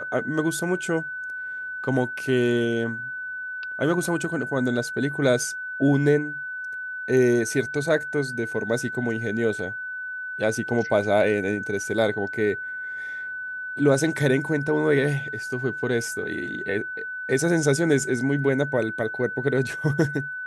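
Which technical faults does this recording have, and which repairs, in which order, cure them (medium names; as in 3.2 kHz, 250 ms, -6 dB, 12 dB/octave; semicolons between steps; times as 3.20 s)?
whine 1.5 kHz -30 dBFS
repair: band-stop 1.5 kHz, Q 30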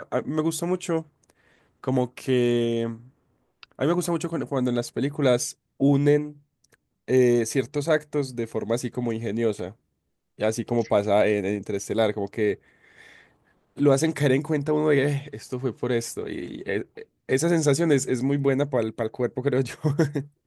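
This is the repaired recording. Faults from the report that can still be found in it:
nothing left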